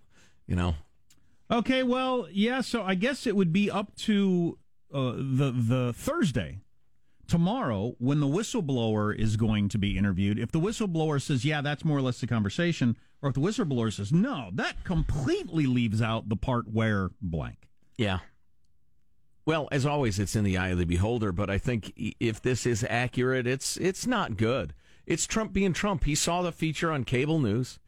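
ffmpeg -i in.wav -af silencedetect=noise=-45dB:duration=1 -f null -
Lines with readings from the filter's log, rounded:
silence_start: 18.27
silence_end: 19.47 | silence_duration: 1.20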